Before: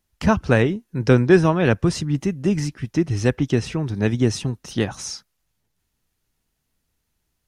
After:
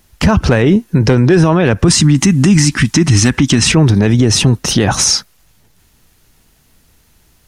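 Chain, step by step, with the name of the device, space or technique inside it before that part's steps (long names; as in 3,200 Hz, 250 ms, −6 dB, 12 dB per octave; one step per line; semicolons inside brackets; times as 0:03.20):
0:01.88–0:03.72: octave-band graphic EQ 250/500/1,000/2,000/4,000/8,000 Hz +8/−12/+6/+4/+4/+12 dB
loud club master (downward compressor 2.5 to 1, threshold −20 dBFS, peak gain reduction 8.5 dB; hard clipping −12 dBFS, distortion −28 dB; boost into a limiter +23 dB)
level −1 dB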